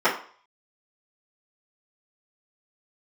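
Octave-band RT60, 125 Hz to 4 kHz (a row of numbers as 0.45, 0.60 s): 0.30, 0.40, 0.45, 0.50, 0.45, 0.45 s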